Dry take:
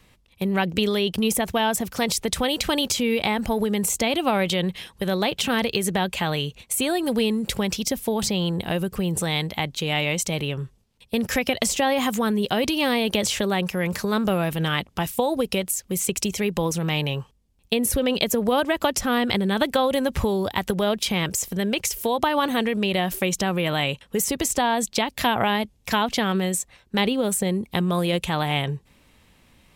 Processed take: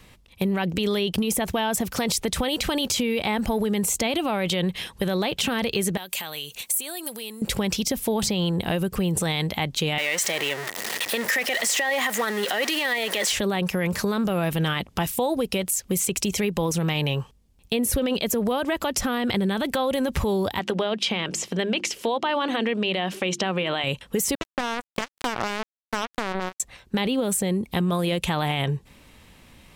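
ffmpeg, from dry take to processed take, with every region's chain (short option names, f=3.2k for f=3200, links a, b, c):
-filter_complex "[0:a]asettb=1/sr,asplit=3[a][b][c];[a]atrim=end=5.974[d];[b]atrim=start=5.97:end=7.42,asetpts=PTS-STARTPTS,afade=t=in:d=0.004:c=qsin,afade=t=out:st=1.446:d=0.004:c=qsin,acompressor=threshold=-36dB:ratio=8:attack=3.2:release=140:knee=1:detection=peak,aemphasis=mode=production:type=riaa[e];[c]atrim=start=7.416[f];[d][e]acrossfade=d=0.004:c1=hsin:c2=qsin[g];[g][f]acrossfade=d=0.004:c1=qsin:c2=hsin,asettb=1/sr,asplit=3[h][i][j];[h]atrim=end=9.984[k];[i]atrim=start=9.98:end=13.32,asetpts=PTS-STARTPTS,afade=t=in:d=0.004:c=qsin,afade=t=out:st=3.336:d=0.004:c=qsin,aeval=exprs='val(0)+0.5*0.0501*sgn(val(0))':c=same,highpass=480,equalizer=f=1.9k:w=7:g=14.5[l];[j]atrim=start=13.316[m];[k][l]acrossfade=d=0.004:c1=hsin:c2=qsin[n];[n][m]acrossfade=d=0.004:c1=qsin:c2=hsin,asettb=1/sr,asplit=3[o][p][q];[o]atrim=end=20.594[r];[p]atrim=start=20.59:end=23.84,asetpts=PTS-STARTPTS,afade=t=in:d=0.004:c=qsin,afade=t=out:st=3.246:d=0.004:c=qsin,highpass=200,lowpass=4.9k,equalizer=f=2.9k:w=4.2:g=4,bandreject=f=50:t=h:w=6,bandreject=f=100:t=h:w=6,bandreject=f=150:t=h:w=6,bandreject=f=200:t=h:w=6,bandreject=f=250:t=h:w=6,bandreject=f=300:t=h:w=6,bandreject=f=350:t=h:w=6[s];[q]atrim=start=23.836[t];[r][s]acrossfade=d=0.004:c1=hsin:c2=qsin[u];[u][t]acrossfade=d=0.004:c1=qsin:c2=hsin,asettb=1/sr,asplit=3[v][w][x];[v]atrim=end=24.354[y];[w]atrim=start=24.35:end=26.6,asetpts=PTS-STARTPTS,afade=t=in:d=0.004:c=qsin,afade=t=out:st=2.246:d=0.004:c=qsin,lowpass=f=2.2k:p=1,acrusher=bits=2:mix=0:aa=0.5[z];[x]atrim=start=26.596[aa];[y][z]acrossfade=d=0.004:c1=hsin:c2=qsin[ab];[ab][aa]acrossfade=d=0.004:c1=qsin:c2=hsin,alimiter=limit=-16dB:level=0:latency=1:release=17,acompressor=threshold=-28dB:ratio=2.5,volume=5.5dB"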